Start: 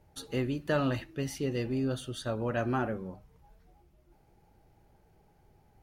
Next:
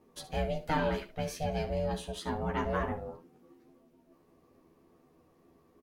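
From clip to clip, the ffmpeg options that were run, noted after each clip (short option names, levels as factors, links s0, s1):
-filter_complex "[0:a]aeval=exprs='val(0)*sin(2*PI*310*n/s)':c=same,asplit=2[s0][s1];[s1]aecho=0:1:12|72:0.668|0.224[s2];[s0][s2]amix=inputs=2:normalize=0"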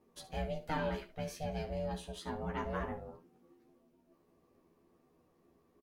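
-filter_complex "[0:a]asplit=2[s0][s1];[s1]adelay=17,volume=0.251[s2];[s0][s2]amix=inputs=2:normalize=0,volume=0.501"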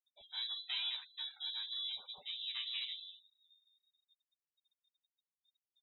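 -af "lowpass=f=3400:t=q:w=0.5098,lowpass=f=3400:t=q:w=0.6013,lowpass=f=3400:t=q:w=0.9,lowpass=f=3400:t=q:w=2.563,afreqshift=-4000,afftfilt=real='re*gte(hypot(re,im),0.00316)':imag='im*gte(hypot(re,im),0.00316)':win_size=1024:overlap=0.75,volume=0.631"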